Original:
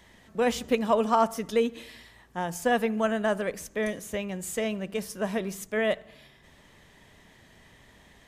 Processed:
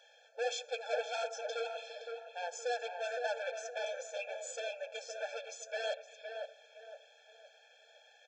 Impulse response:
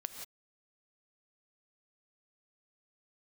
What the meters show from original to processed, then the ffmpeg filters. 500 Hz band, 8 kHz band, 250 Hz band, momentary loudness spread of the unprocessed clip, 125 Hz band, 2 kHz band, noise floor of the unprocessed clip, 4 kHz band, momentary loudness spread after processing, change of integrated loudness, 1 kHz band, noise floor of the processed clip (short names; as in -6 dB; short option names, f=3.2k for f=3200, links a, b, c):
-10.0 dB, -7.0 dB, under -40 dB, 10 LU, under -40 dB, -8.0 dB, -57 dBFS, -4.5 dB, 16 LU, -11.5 dB, -12.5 dB, -64 dBFS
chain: -filter_complex "[0:a]aresample=16000,volume=28dB,asoftclip=hard,volume=-28dB,aresample=44100,equalizer=f=3.1k:t=o:w=0.55:g=4.5,flanger=delay=2:depth=6.8:regen=-50:speed=1.5:shape=sinusoidal,asubboost=boost=4.5:cutoff=170,asplit=2[a][b];[b]adelay=515,lowpass=f=1.6k:p=1,volume=-4.5dB,asplit=2[c][d];[d]adelay=515,lowpass=f=1.6k:p=1,volume=0.38,asplit=2[e][f];[f]adelay=515,lowpass=f=1.6k:p=1,volume=0.38,asplit=2[g][h];[h]adelay=515,lowpass=f=1.6k:p=1,volume=0.38,asplit=2[i][j];[j]adelay=515,lowpass=f=1.6k:p=1,volume=0.38[k];[a][c][e][g][i][k]amix=inputs=6:normalize=0,afftfilt=real='re*eq(mod(floor(b*sr/1024/450),2),1)':imag='im*eq(mod(floor(b*sr/1024/450),2),1)':win_size=1024:overlap=0.75,volume=2dB"